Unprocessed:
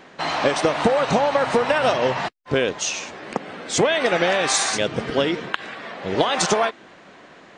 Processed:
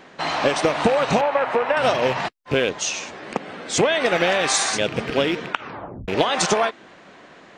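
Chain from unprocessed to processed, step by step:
loose part that buzzes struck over −31 dBFS, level −19 dBFS
0:01.21–0:01.77: three-way crossover with the lows and the highs turned down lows −12 dB, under 330 Hz, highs −17 dB, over 2,800 Hz
0:05.48: tape stop 0.60 s

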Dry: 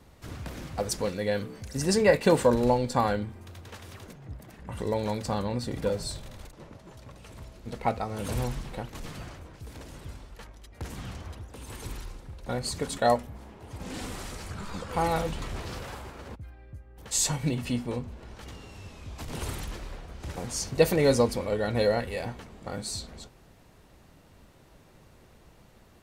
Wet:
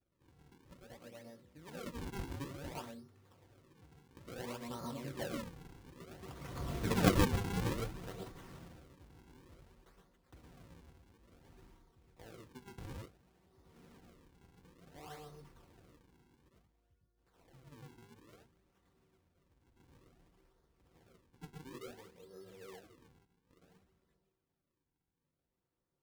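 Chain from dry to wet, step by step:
source passing by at 0:06.76, 38 m/s, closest 5.2 metres
moving average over 5 samples
tuned comb filter 380 Hz, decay 0.73 s, mix 50%
convolution reverb RT60 0.15 s, pre-delay 108 ms, DRR 3 dB
sample-and-hold swept by an LFO 41×, swing 160% 0.57 Hz
notch comb filter 210 Hz
level +8 dB

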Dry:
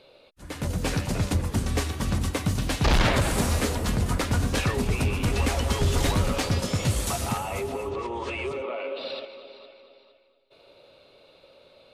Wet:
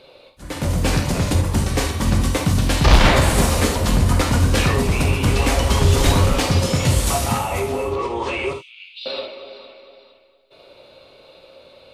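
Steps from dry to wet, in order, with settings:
0:08.53–0:09.06: Butterworth high-pass 2,800 Hz 36 dB per octave
reverb whose tail is shaped and stops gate 100 ms flat, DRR 3 dB
level +6 dB

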